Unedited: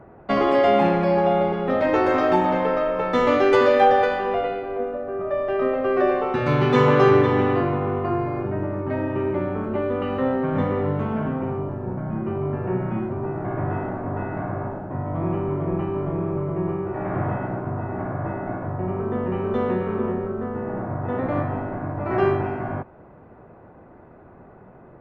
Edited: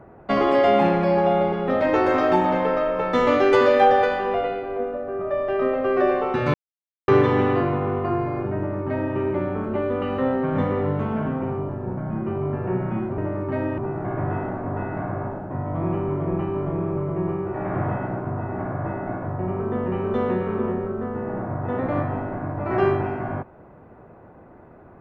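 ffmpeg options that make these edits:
-filter_complex "[0:a]asplit=5[s0][s1][s2][s3][s4];[s0]atrim=end=6.54,asetpts=PTS-STARTPTS,afade=t=out:st=6.536:d=0.004:c=hsin[s5];[s1]atrim=start=6.54:end=7.08,asetpts=PTS-STARTPTS,volume=0[s6];[s2]atrim=start=7.08:end=13.182,asetpts=PTS-STARTPTS,afade=t=in:d=0.004:c=hsin[s7];[s3]atrim=start=8.558:end=9.162[s8];[s4]atrim=start=13.178[s9];[s5][s6][s7]concat=n=3:v=0:a=1[s10];[s10][s8]acrossfade=d=0.004:c1=hsin:c2=hsin[s11];[s11][s9]acrossfade=d=0.004:c1=hsin:c2=hsin"

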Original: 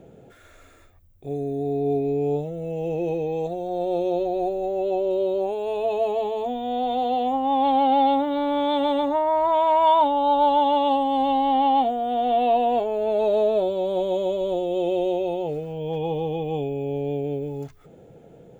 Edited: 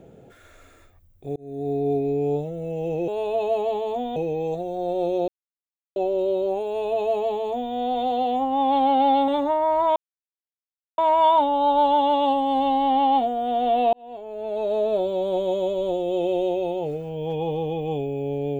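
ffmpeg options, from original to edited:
-filter_complex "[0:a]asplit=9[s0][s1][s2][s3][s4][s5][s6][s7][s8];[s0]atrim=end=1.36,asetpts=PTS-STARTPTS,afade=t=out:st=1.356:d=0.004:c=hsin[s9];[s1]atrim=start=1.36:end=3.082,asetpts=PTS-STARTPTS,afade=t=in:d=0.34[s10];[s2]atrim=start=5.578:end=6.662[s11];[s3]atrim=start=3.078:end=4.2,asetpts=PTS-STARTPTS,afade=t=out:st=1.118:d=0.004:c=hsin[s12];[s4]atrim=start=4.2:end=4.88,asetpts=PTS-STARTPTS,volume=0[s13];[s5]atrim=start=4.88:end=8.202,asetpts=PTS-STARTPTS,afade=t=in:d=0.004:c=hsin[s14];[s6]atrim=start=8.928:end=9.61,asetpts=PTS-STARTPTS,afade=t=out:st=0.678:d=0.004:c=hsin,apad=pad_dur=1.02[s15];[s7]atrim=start=9.61:end=12.56,asetpts=PTS-STARTPTS,afade=t=in:d=0.004:c=hsin,afade=t=out:st=2.946:d=0.004:c=hsin[s16];[s8]atrim=start=12.56,asetpts=PTS-STARTPTS,afade=t=in:d=1.17[s17];[s9][s10]concat=n=2:v=0:a=1[s18];[s18][s11]acrossfade=d=0.004:c1=hsin:c2=hsin[s19];[s12][s13][s14]concat=n=3:v=0:a=1[s20];[s19][s20]acrossfade=d=0.004:c1=hsin:c2=hsin[s21];[s15][s16][s17]concat=n=3:v=0:a=1[s22];[s21][s22]acrossfade=d=0.004:c1=hsin:c2=hsin"

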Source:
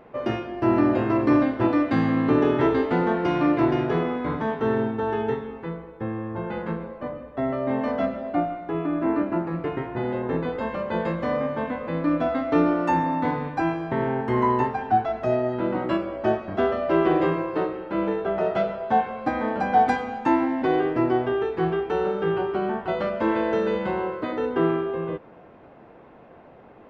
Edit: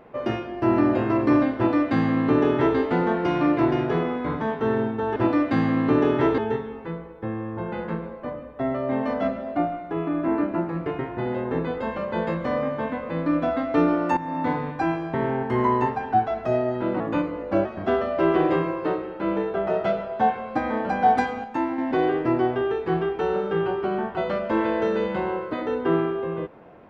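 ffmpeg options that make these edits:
-filter_complex "[0:a]asplit=8[s0][s1][s2][s3][s4][s5][s6][s7];[s0]atrim=end=5.162[s8];[s1]atrim=start=1.558:end=2.782[s9];[s2]atrim=start=5.158:end=12.95,asetpts=PTS-STARTPTS,afade=t=out:st=7.788:d=0.004:c=hsin:silence=0.188365[s10];[s3]atrim=start=12.95:end=15.784,asetpts=PTS-STARTPTS,afade=t=in:d=0.28:silence=0.188365[s11];[s4]atrim=start=15.78:end=16.36,asetpts=PTS-STARTPTS,asetrate=39249,aresample=44100,atrim=end_sample=28739,asetpts=PTS-STARTPTS[s12];[s5]atrim=start=16.356:end=20.152[s13];[s6]atrim=start=20.148:end=20.492,asetpts=PTS-STARTPTS,volume=0.562[s14];[s7]atrim=start=20.488[s15];[s8][s9]acrossfade=d=0.004:c1=hsin:c2=hsin[s16];[s10][s11]concat=n=2:v=0:a=1[s17];[s16][s17]acrossfade=d=0.004:c1=hsin:c2=hsin[s18];[s18][s12]acrossfade=d=0.004:c1=hsin:c2=hsin[s19];[s19][s13]acrossfade=d=0.004:c1=hsin:c2=hsin[s20];[s20][s14]acrossfade=d=0.004:c1=hsin:c2=hsin[s21];[s21][s15]acrossfade=d=0.004:c1=hsin:c2=hsin"

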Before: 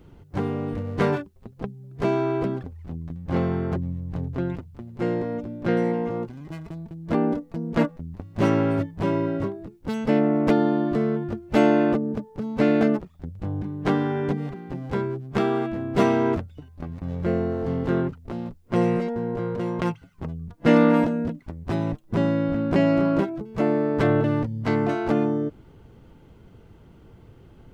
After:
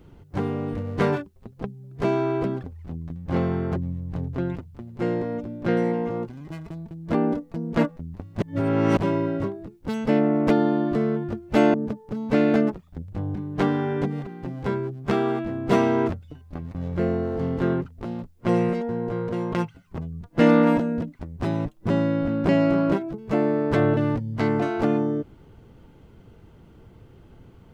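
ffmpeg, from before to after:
-filter_complex "[0:a]asplit=4[s0][s1][s2][s3];[s0]atrim=end=8.422[s4];[s1]atrim=start=8.418:end=8.972,asetpts=PTS-STARTPTS,areverse[s5];[s2]atrim=start=8.968:end=11.742[s6];[s3]atrim=start=12.008[s7];[s4][s5]acrossfade=d=0.004:c1=hsin:c2=hsin[s8];[s8][s6]acrossfade=d=0.004:c1=hsin:c2=hsin[s9];[s9][s7]acrossfade=d=0.004:c1=hsin:c2=hsin"

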